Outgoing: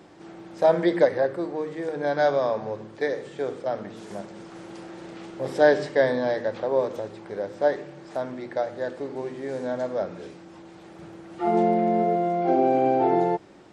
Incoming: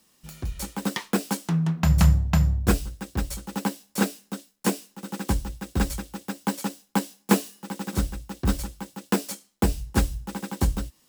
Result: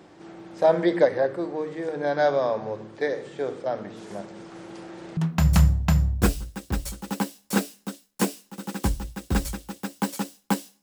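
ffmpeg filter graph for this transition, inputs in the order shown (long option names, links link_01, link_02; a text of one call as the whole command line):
ffmpeg -i cue0.wav -i cue1.wav -filter_complex "[0:a]apad=whole_dur=10.82,atrim=end=10.82,atrim=end=5.172[link_01];[1:a]atrim=start=1.618:end=7.27[link_02];[link_01][link_02]acrossfade=duration=0.004:curve1=hsin:curve2=hsin" out.wav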